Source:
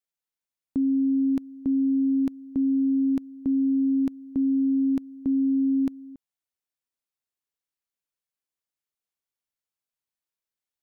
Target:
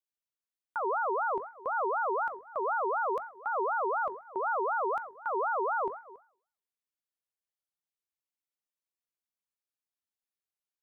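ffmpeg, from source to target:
ffmpeg -i in.wav -af "bandreject=frequency=45.77:width_type=h:width=4,bandreject=frequency=91.54:width_type=h:width=4,bandreject=frequency=137.31:width_type=h:width=4,bandreject=frequency=183.08:width_type=h:width=4,bandreject=frequency=228.85:width_type=h:width=4,bandreject=frequency=274.62:width_type=h:width=4,bandreject=frequency=320.39:width_type=h:width=4,bandreject=frequency=366.16:width_type=h:width=4,bandreject=frequency=411.93:width_type=h:width=4,bandreject=frequency=457.7:width_type=h:width=4,bandreject=frequency=503.47:width_type=h:width=4,bandreject=frequency=549.24:width_type=h:width=4,bandreject=frequency=595.01:width_type=h:width=4,bandreject=frequency=640.78:width_type=h:width=4,bandreject=frequency=686.55:width_type=h:width=4,bandreject=frequency=732.32:width_type=h:width=4,bandreject=frequency=778.09:width_type=h:width=4,bandreject=frequency=823.86:width_type=h:width=4,bandreject=frequency=869.63:width_type=h:width=4,bandreject=frequency=915.4:width_type=h:width=4,bandreject=frequency=961.17:width_type=h:width=4,bandreject=frequency=1006.94:width_type=h:width=4,bandreject=frequency=1052.71:width_type=h:width=4,bandreject=frequency=1098.48:width_type=h:width=4,bandreject=frequency=1144.25:width_type=h:width=4,bandreject=frequency=1190.02:width_type=h:width=4,bandreject=frequency=1235.79:width_type=h:width=4,aeval=exprs='val(0)*sin(2*PI*920*n/s+920*0.3/4*sin(2*PI*4*n/s))':channel_layout=same,volume=-4dB" out.wav

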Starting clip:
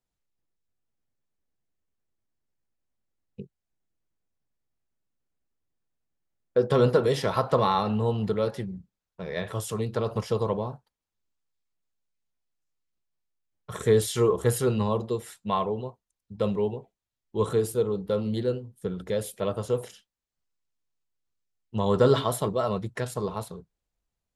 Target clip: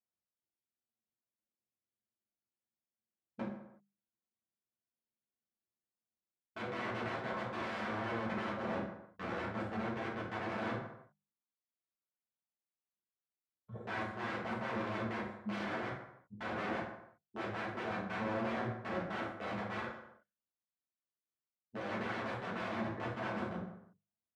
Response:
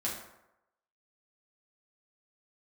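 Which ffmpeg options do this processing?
-filter_complex "[0:a]afwtdn=0.0316,bandreject=frequency=50:width_type=h:width=6,bandreject=frequency=100:width_type=h:width=6,bandreject=frequency=150:width_type=h:width=6,bandreject=frequency=200:width_type=h:width=6,areverse,acompressor=threshold=-36dB:ratio=5,areverse,aeval=exprs='(mod(70.8*val(0)+1,2)-1)/70.8':channel_layout=same,highpass=120,lowpass=2100[link_01];[1:a]atrim=start_sample=2205,afade=type=out:start_time=0.43:duration=0.01,atrim=end_sample=19404[link_02];[link_01][link_02]afir=irnorm=-1:irlink=0,volume=1.5dB"

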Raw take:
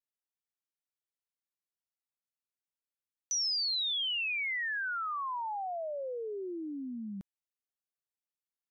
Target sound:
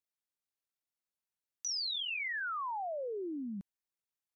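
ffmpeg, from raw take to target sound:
ffmpeg -i in.wav -filter_complex "[0:a]bandreject=frequency=3000:width=25,asplit=2[link_01][link_02];[link_02]alimiter=level_in=11.5dB:limit=-24dB:level=0:latency=1:release=13,volume=-11.5dB,volume=1dB[link_03];[link_01][link_03]amix=inputs=2:normalize=0,atempo=2,volume=-6.5dB" out.wav

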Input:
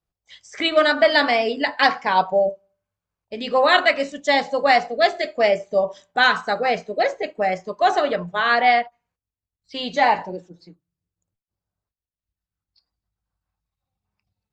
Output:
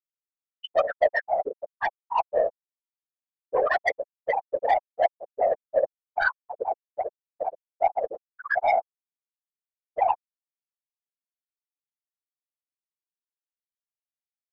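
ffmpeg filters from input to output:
ffmpeg -i in.wav -af "afftfilt=real='re*gte(hypot(re,im),1)':imag='im*gte(hypot(re,im),1)':win_size=1024:overlap=0.75,aeval=exprs='0.473*(cos(1*acos(clip(val(0)/0.473,-1,1)))-cos(1*PI/2))+0.0596*(cos(5*acos(clip(val(0)/0.473,-1,1)))-cos(5*PI/2))+0.00376*(cos(6*acos(clip(val(0)/0.473,-1,1)))-cos(6*PI/2))+0.015*(cos(7*acos(clip(val(0)/0.473,-1,1)))-cos(7*PI/2))':channel_layout=same,afftfilt=real='hypot(re,im)*cos(2*PI*random(0))':imag='hypot(re,im)*sin(2*PI*random(1))':win_size=512:overlap=0.75" out.wav

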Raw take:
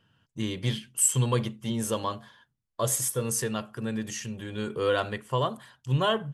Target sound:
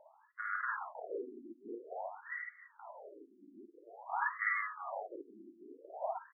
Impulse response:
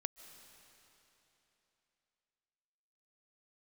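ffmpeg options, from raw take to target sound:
-af "alimiter=limit=-20.5dB:level=0:latency=1,acompressor=threshold=-35dB:ratio=4,lowpass=frequency=3100:width_type=q:width=0.5098,lowpass=frequency=3100:width_type=q:width=0.6013,lowpass=frequency=3100:width_type=q:width=0.9,lowpass=frequency=3100:width_type=q:width=2.563,afreqshift=-3600,aecho=1:1:51|54|356|490|728:0.668|0.668|0.178|0.112|0.15,afftfilt=real='re*between(b*sr/1024,260*pow(1600/260,0.5+0.5*sin(2*PI*0.5*pts/sr))/1.41,260*pow(1600/260,0.5+0.5*sin(2*PI*0.5*pts/sr))*1.41)':imag='im*between(b*sr/1024,260*pow(1600/260,0.5+0.5*sin(2*PI*0.5*pts/sr))/1.41,260*pow(1600/260,0.5+0.5*sin(2*PI*0.5*pts/sr))*1.41)':win_size=1024:overlap=0.75,volume=14.5dB"

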